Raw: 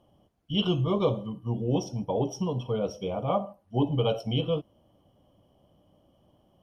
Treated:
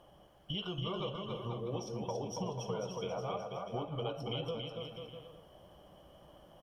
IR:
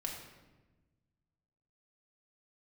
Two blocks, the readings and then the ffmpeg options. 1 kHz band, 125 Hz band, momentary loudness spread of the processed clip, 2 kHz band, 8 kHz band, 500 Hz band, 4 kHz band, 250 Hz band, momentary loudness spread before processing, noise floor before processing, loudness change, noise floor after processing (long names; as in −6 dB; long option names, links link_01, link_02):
−7.5 dB, −11.5 dB, 20 LU, −5.5 dB, can't be measured, −9.5 dB, −6.5 dB, −13.0 dB, 6 LU, −66 dBFS, −10.5 dB, −61 dBFS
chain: -filter_complex "[0:a]equalizer=frequency=100:width_type=o:width=0.67:gain=-11,equalizer=frequency=250:width_type=o:width=0.67:gain=-11,equalizer=frequency=1600:width_type=o:width=0.67:gain=8,acompressor=threshold=-43dB:ratio=10,asplit=2[link_01][link_02];[link_02]aecho=0:1:280|490|647.5|765.6|854.2:0.631|0.398|0.251|0.158|0.1[link_03];[link_01][link_03]amix=inputs=2:normalize=0,volume=6dB"